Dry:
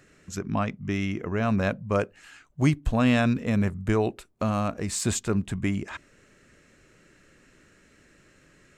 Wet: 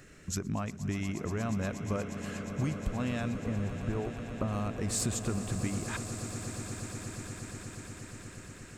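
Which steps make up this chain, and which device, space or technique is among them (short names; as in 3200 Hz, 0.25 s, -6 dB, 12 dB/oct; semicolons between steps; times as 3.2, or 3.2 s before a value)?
ASMR close-microphone chain (low shelf 110 Hz +7.5 dB; compressor 5:1, threshold -33 dBFS, peak gain reduction 18 dB; high shelf 7600 Hz +5.5 dB); 3.36–4.48 LPF 1500 Hz; swelling echo 0.119 s, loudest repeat 8, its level -14.5 dB; gain +1.5 dB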